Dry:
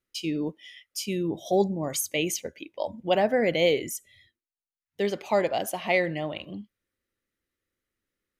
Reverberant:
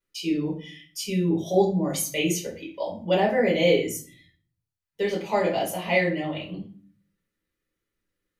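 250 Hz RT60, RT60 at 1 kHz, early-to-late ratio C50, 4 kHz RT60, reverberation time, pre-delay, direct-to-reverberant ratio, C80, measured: 0.70 s, 0.45 s, 8.0 dB, 0.30 s, 0.45 s, 5 ms, -5.0 dB, 13.5 dB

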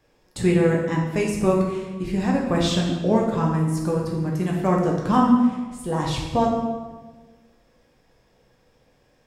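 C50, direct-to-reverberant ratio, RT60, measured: 3.0 dB, -2.5 dB, 1.3 s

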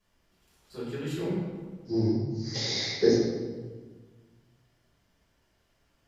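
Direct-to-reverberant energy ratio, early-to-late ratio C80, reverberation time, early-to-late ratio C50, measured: -10.5 dB, 2.0 dB, 1.5 s, -0.5 dB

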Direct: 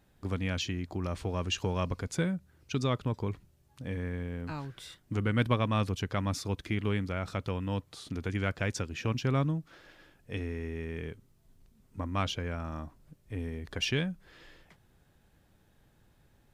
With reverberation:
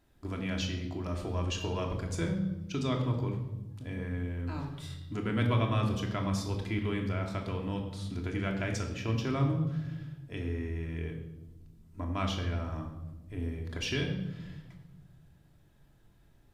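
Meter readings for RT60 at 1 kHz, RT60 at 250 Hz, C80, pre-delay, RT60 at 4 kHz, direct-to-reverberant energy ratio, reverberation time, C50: 0.90 s, 1.9 s, 9.0 dB, 3 ms, 0.80 s, 1.0 dB, 1.0 s, 6.5 dB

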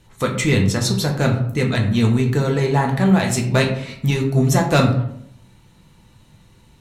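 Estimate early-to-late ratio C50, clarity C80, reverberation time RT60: 7.5 dB, 10.5 dB, 0.70 s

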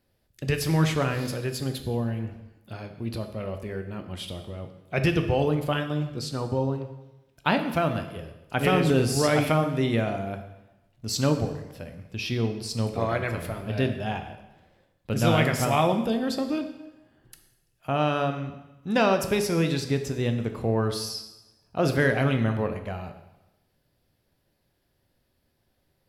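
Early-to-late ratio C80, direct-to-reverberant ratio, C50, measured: 11.5 dB, 6.5 dB, 9.0 dB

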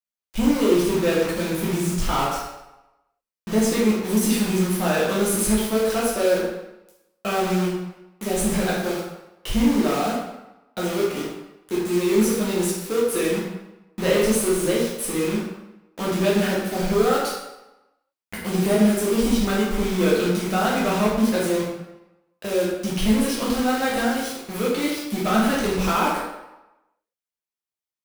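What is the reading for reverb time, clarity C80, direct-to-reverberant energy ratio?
0.95 s, 3.5 dB, -6.5 dB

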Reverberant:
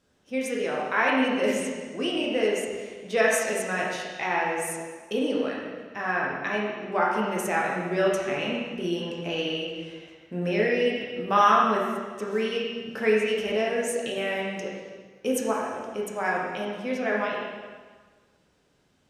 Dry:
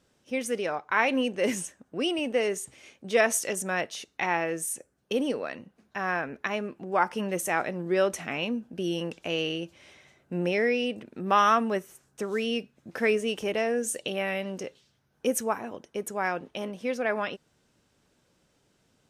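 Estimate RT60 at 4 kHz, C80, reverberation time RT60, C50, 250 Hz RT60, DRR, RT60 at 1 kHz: 1.4 s, 2.5 dB, 1.5 s, 0.5 dB, 1.4 s, -4.0 dB, 1.5 s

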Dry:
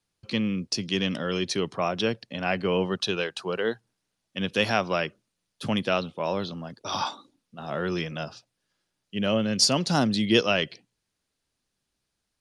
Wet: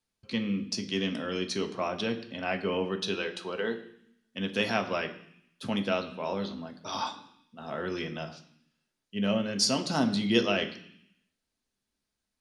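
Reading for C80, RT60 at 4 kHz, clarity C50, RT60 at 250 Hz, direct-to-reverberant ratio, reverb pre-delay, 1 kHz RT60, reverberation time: 15.0 dB, 0.85 s, 12.0 dB, 0.95 s, 4.0 dB, 3 ms, 0.70 s, 0.65 s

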